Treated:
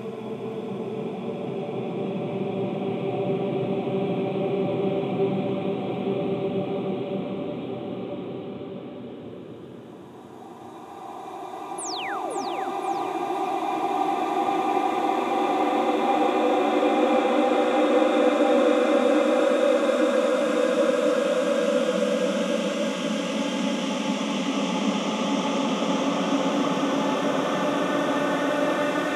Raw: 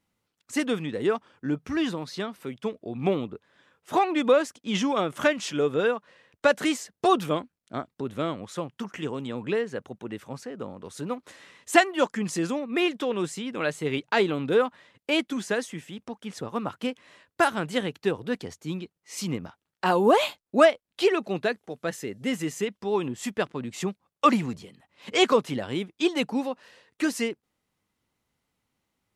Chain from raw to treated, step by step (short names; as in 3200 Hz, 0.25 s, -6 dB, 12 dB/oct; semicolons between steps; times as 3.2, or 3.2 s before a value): Paulstretch 12×, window 1.00 s, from 2.72; painted sound fall, 11.78–12.45, 230–11000 Hz -34 dBFS; echo with dull and thin repeats by turns 0.26 s, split 840 Hz, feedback 57%, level -4 dB